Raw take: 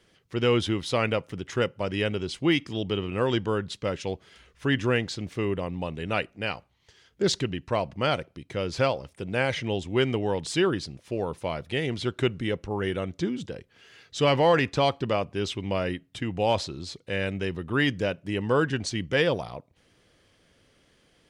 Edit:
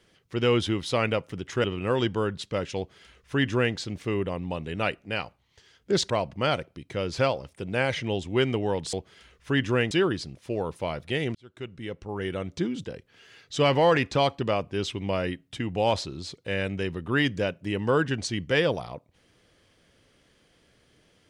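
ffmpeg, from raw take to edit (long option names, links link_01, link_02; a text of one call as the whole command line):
ffmpeg -i in.wav -filter_complex "[0:a]asplit=6[link_01][link_02][link_03][link_04][link_05][link_06];[link_01]atrim=end=1.642[link_07];[link_02]atrim=start=2.948:end=7.412[link_08];[link_03]atrim=start=7.698:end=10.532[link_09];[link_04]atrim=start=4.078:end=5.062[link_10];[link_05]atrim=start=10.528:end=11.97,asetpts=PTS-STARTPTS,afade=type=out:start_time=1.438:duration=0.004:curve=hsin[link_11];[link_06]atrim=start=11.97,asetpts=PTS-STARTPTS,afade=type=in:duration=1.24[link_12];[link_07][link_08]acrossfade=duration=0.004:curve1=hsin:curve2=hsin[link_13];[link_13][link_09]acrossfade=duration=0.004:curve1=hsin:curve2=hsin[link_14];[link_14][link_10]acrossfade=duration=0.004:curve1=hsin:curve2=hsin[link_15];[link_11][link_12]concat=n=2:v=0:a=1[link_16];[link_15][link_16]acrossfade=duration=0.004:curve1=hsin:curve2=hsin" out.wav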